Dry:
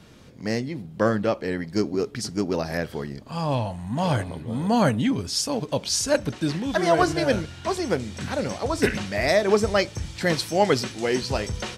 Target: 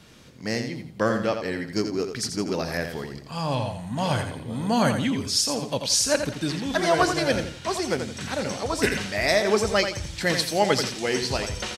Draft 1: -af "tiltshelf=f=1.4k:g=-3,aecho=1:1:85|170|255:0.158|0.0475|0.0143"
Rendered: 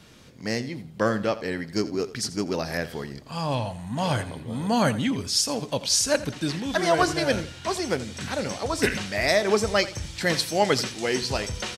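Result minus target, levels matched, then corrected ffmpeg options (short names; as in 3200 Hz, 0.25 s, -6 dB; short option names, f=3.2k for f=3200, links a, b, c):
echo-to-direct -8.5 dB
-af "tiltshelf=f=1.4k:g=-3,aecho=1:1:85|170|255|340:0.422|0.127|0.038|0.0114"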